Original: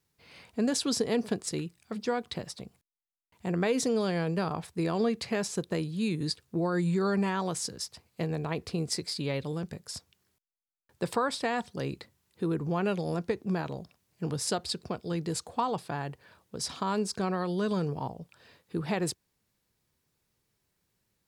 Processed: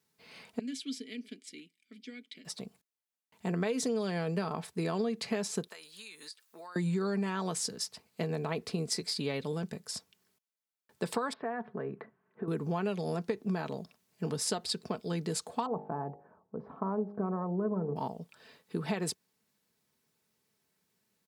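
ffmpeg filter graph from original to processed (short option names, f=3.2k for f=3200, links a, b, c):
-filter_complex "[0:a]asettb=1/sr,asplit=3[a][b][c];[a]atrim=end=0.594[d];[b]atrim=start=0.59:end=2.45,asetpts=PTS-STARTPTS,afade=t=in:d=0.004:c=qsin,afade=t=out:st=1.856:d=0.004:c=qsin,asplit=3[e][f][g];[e]bandpass=f=270:t=q:w=8,volume=0dB[h];[f]bandpass=f=2.29k:t=q:w=8,volume=-6dB[i];[g]bandpass=f=3.01k:t=q:w=8,volume=-9dB[j];[h][i][j]amix=inputs=3:normalize=0,aemphasis=mode=production:type=riaa[k];[c]atrim=start=2.446[l];[d][k]acrossfade=d=0.004:c1=hsin:c2=qsin[m];[m][l]acrossfade=d=0.004:c1=qsin:c2=hsin,asettb=1/sr,asplit=3[n][o][p];[n]atrim=end=5.684[q];[o]atrim=start=5.68:end=6.76,asetpts=PTS-STARTPTS,afade=t=in:d=0.004:c=qsin,afade=t=out:st=1.076:d=0.004:c=qsin,highpass=1.1k,highshelf=f=11k:g=9,acompressor=threshold=-44dB:ratio=6:attack=3.2:release=140:knee=1:detection=peak[r];[p]atrim=start=6.756[s];[q][r]acrossfade=d=0.004:c1=hsin:c2=qsin[t];[t][s]acrossfade=d=0.004:c1=qsin:c2=hsin,asettb=1/sr,asplit=3[u][v][w];[u]atrim=end=11.334[x];[v]atrim=start=11.33:end=12.48,asetpts=PTS-STARTPTS,afade=t=in:d=0.004:c=qsin,afade=t=out:st=1.146:d=0.004:c=qsin,acompressor=threshold=-40dB:ratio=4:attack=3.2:release=140:knee=1:detection=peak,highpass=130,equalizer=f=140:t=q:w=4:g=8,equalizer=f=220:t=q:w=4:g=5,equalizer=f=420:t=q:w=4:g=9,equalizer=f=680:t=q:w=4:g=8,equalizer=f=1.1k:t=q:w=4:g=7,equalizer=f=1.6k:t=q:w=4:g=7,lowpass=f=2k:w=0.5412,lowpass=f=2k:w=1.3066[y];[w]atrim=start=12.476[z];[x][y]acrossfade=d=0.004:c1=hsin:c2=qsin[aa];[aa][z]acrossfade=d=0.004:c1=qsin:c2=hsin,asettb=1/sr,asplit=3[ab][ac][ad];[ab]atrim=end=15.664[ae];[ac]atrim=start=15.66:end=17.96,asetpts=PTS-STARTPTS,afade=t=in:d=0.004:c=qsin,afade=t=out:st=2.296:d=0.004:c=qsin,lowpass=f=1.1k:w=0.5412,lowpass=f=1.1k:w=1.3066,bandreject=f=51.15:t=h:w=4,bandreject=f=102.3:t=h:w=4,bandreject=f=153.45:t=h:w=4,bandreject=f=204.6:t=h:w=4,bandreject=f=255.75:t=h:w=4,bandreject=f=306.9:t=h:w=4,bandreject=f=358.05:t=h:w=4,bandreject=f=409.2:t=h:w=4,bandreject=f=460.35:t=h:w=4,bandreject=f=511.5:t=h:w=4,bandreject=f=562.65:t=h:w=4,bandreject=f=613.8:t=h:w=4,bandreject=f=664.95:t=h:w=4,bandreject=f=716.1:t=h:w=4,bandreject=f=767.25:t=h:w=4,bandreject=f=818.4:t=h:w=4,bandreject=f=869.55:t=h:w=4,bandreject=f=920.7:t=h:w=4[af];[ad]atrim=start=17.956[ag];[ae][af]acrossfade=d=0.004:c1=hsin:c2=qsin[ah];[ah][ag]acrossfade=d=0.004:c1=qsin:c2=hsin,highpass=140,aecho=1:1:4.6:0.38,acompressor=threshold=-28dB:ratio=6"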